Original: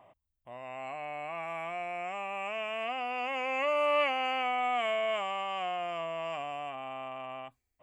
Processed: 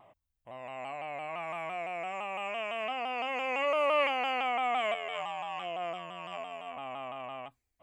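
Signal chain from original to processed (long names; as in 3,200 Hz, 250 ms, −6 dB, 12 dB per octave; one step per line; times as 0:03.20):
0:04.94–0:06.77: phases set to zero 87.1 Hz
pitch modulation by a square or saw wave saw down 5.9 Hz, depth 100 cents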